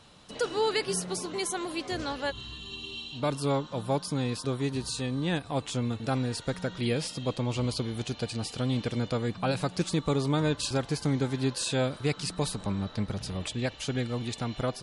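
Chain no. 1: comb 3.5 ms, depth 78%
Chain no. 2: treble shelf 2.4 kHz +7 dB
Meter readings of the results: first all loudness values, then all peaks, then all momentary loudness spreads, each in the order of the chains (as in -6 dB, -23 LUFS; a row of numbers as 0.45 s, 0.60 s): -29.5 LUFS, -29.0 LUFS; -12.5 dBFS, -12.0 dBFS; 6 LU, 7 LU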